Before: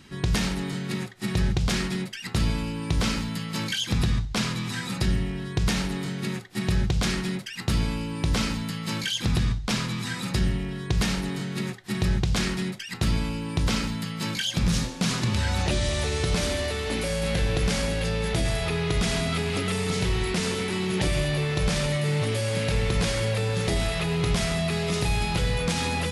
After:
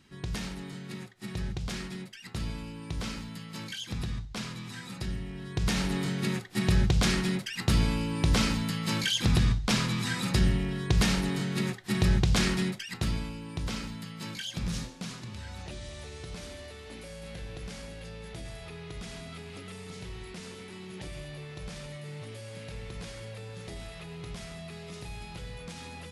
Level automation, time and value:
0:05.22 −10.5 dB
0:05.95 0 dB
0:12.63 0 dB
0:13.35 −9.5 dB
0:14.81 −9.5 dB
0:15.24 −16.5 dB

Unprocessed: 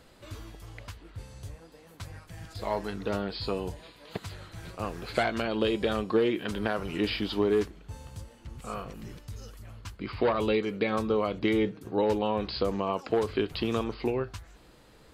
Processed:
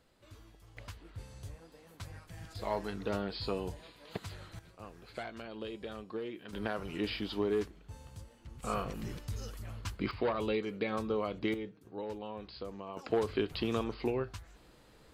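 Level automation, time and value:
−12.5 dB
from 0:00.77 −4 dB
from 0:04.59 −15 dB
from 0:06.53 −6.5 dB
from 0:08.63 +2 dB
from 0:10.11 −6.5 dB
from 0:11.54 −14.5 dB
from 0:12.97 −4 dB

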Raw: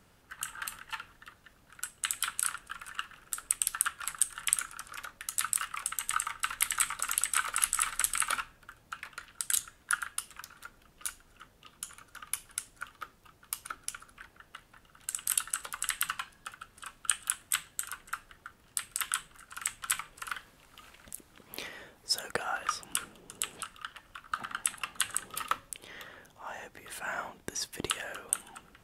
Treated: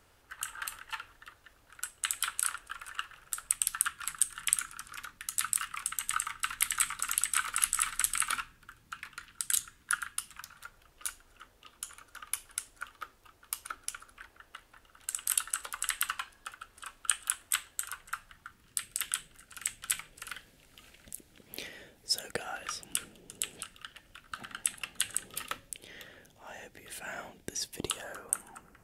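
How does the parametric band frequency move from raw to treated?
parametric band −12 dB 0.8 octaves
0:02.99 180 Hz
0:03.92 640 Hz
0:10.14 640 Hz
0:11.06 160 Hz
0:17.71 160 Hz
0:18.94 1,100 Hz
0:27.61 1,100 Hz
0:28.27 3,400 Hz

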